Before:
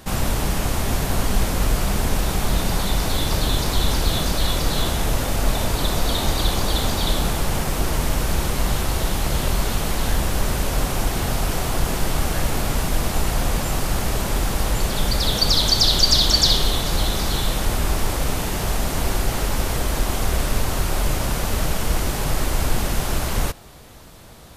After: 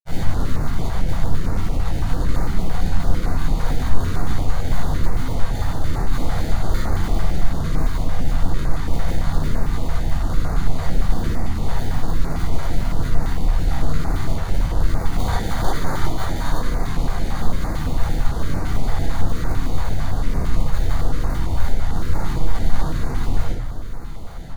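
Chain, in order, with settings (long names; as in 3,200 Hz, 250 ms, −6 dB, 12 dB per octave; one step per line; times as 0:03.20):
each half-wave held at its own peak
high-shelf EQ 9,200 Hz +10 dB
downward compressor, threshold −12 dBFS, peak gain reduction 8.5 dB
feedback delay with all-pass diffusion 1,951 ms, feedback 62%, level −13 dB
sample-rate reduction 2,700 Hz, jitter 0%
granular cloud, pitch spread up and down by 0 semitones
rectangular room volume 840 cubic metres, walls furnished, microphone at 7.4 metres
notch on a step sequencer 8.9 Hz 280–3,200 Hz
level −15.5 dB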